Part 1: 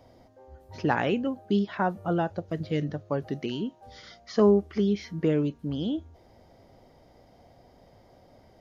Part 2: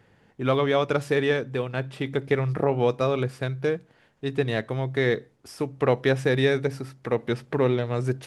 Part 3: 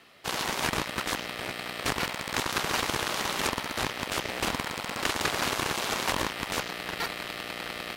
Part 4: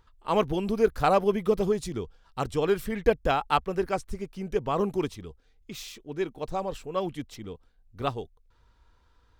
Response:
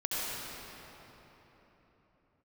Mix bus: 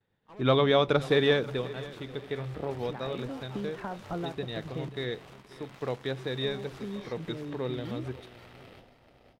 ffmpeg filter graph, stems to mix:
-filter_complex "[0:a]agate=range=-33dB:threshold=-54dB:ratio=3:detection=peak,acompressor=threshold=-34dB:ratio=6,adelay=2050,volume=2dB,asplit=3[a][b][c];[a]atrim=end=4.89,asetpts=PTS-STARTPTS,afade=t=out:st=4.886:d=0.004:c=hsin[d];[b]atrim=start=4.89:end=6.44,asetpts=PTS-STARTPTS,volume=0[e];[c]atrim=start=6.44,asetpts=PTS-STARTPTS,afade=t=in:d=0.004:c=hsin[f];[d][e][f]concat=n=3:v=0:a=1[g];[1:a]equalizer=f=3.7k:w=5.9:g=14.5,volume=-0.5dB,afade=t=out:st=1.42:d=0.33:silence=0.281838,asplit=3[h][i][j];[i]volume=-18.5dB[k];[2:a]alimiter=limit=-19.5dB:level=0:latency=1:release=248,adelay=850,volume=-17.5dB,asplit=2[l][m];[m]volume=-6dB[n];[3:a]asoftclip=type=hard:threshold=-26.5dB,volume=-19dB,asplit=2[o][p];[p]volume=-7.5dB[q];[j]apad=whole_len=469745[r];[g][r]sidechaincompress=threshold=-32dB:ratio=8:attack=5.6:release=1020[s];[k][n][q]amix=inputs=3:normalize=0,aecho=0:1:533|1066|1599|2132|2665:1|0.36|0.13|0.0467|0.0168[t];[s][h][l][o][t]amix=inputs=5:normalize=0,highshelf=f=3.6k:g=-7.5,agate=range=-33dB:threshold=-48dB:ratio=3:detection=peak"

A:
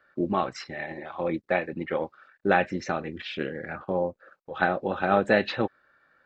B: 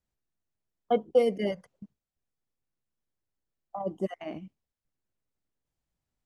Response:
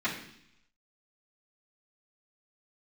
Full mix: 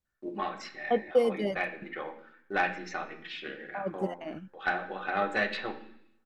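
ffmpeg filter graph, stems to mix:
-filter_complex "[0:a]highpass=f=800:p=1,agate=range=-19dB:threshold=-59dB:ratio=16:detection=peak,aeval=exprs='0.355*(cos(1*acos(clip(val(0)/0.355,-1,1)))-cos(1*PI/2))+0.0282*(cos(4*acos(clip(val(0)/0.355,-1,1)))-cos(4*PI/2))+0.002*(cos(7*acos(clip(val(0)/0.355,-1,1)))-cos(7*PI/2))':c=same,adelay=50,volume=-6.5dB,asplit=2[a][b];[b]volume=-9dB[c];[1:a]volume=-1.5dB[d];[2:a]atrim=start_sample=2205[e];[c][e]afir=irnorm=-1:irlink=0[f];[a][d][f]amix=inputs=3:normalize=0"

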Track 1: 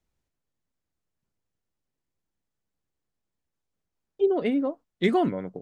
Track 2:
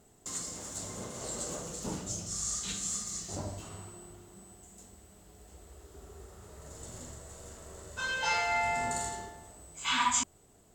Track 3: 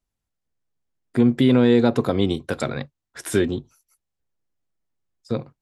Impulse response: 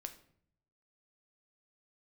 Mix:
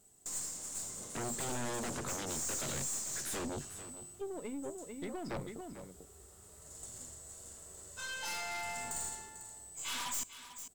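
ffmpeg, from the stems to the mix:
-filter_complex "[0:a]acompressor=threshold=-24dB:ratio=6,volume=-11dB,asplit=2[a][b];[b]volume=-5.5dB[c];[1:a]equalizer=f=8.7k:w=3.3:g=6,aeval=exprs='0.0596*(abs(mod(val(0)/0.0596+3,4)-2)-1)':c=same,highshelf=f=4.1k:g=12,volume=-10dB,asplit=3[d][e][f];[e]volume=-11dB[g];[f]volume=-13.5dB[h];[2:a]acompressor=threshold=-21dB:ratio=6,aeval=exprs='0.0447*(abs(mod(val(0)/0.0447+3,4)-2)-1)':c=same,volume=-3.5dB,asplit=2[i][j];[j]volume=-15dB[k];[3:a]atrim=start_sample=2205[l];[g][l]afir=irnorm=-1:irlink=0[m];[c][h][k]amix=inputs=3:normalize=0,aecho=0:1:445:1[n];[a][d][i][m][n]amix=inputs=5:normalize=0,aeval=exprs='(tanh(50.1*val(0)+0.45)-tanh(0.45))/50.1':c=same"

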